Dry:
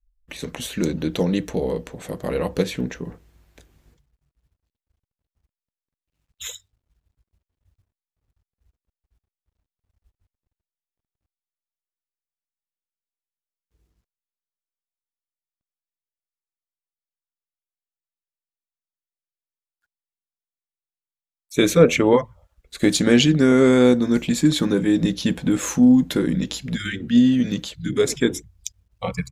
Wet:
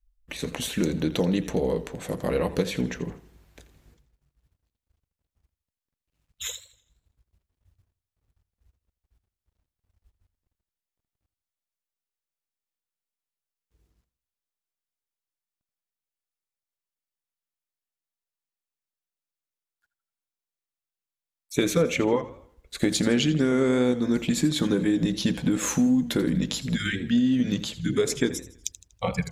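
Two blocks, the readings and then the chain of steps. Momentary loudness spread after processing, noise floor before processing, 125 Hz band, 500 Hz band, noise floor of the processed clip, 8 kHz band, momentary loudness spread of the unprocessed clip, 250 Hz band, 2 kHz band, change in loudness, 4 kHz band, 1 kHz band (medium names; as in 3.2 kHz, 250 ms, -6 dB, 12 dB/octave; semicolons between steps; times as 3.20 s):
12 LU, under -85 dBFS, -4.0 dB, -6.0 dB, under -85 dBFS, -2.5 dB, 19 LU, -5.5 dB, -4.5 dB, -6.0 dB, -4.0 dB, -5.0 dB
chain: compression 4:1, threshold -20 dBFS, peak gain reduction 11 dB; modulated delay 82 ms, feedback 42%, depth 105 cents, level -15 dB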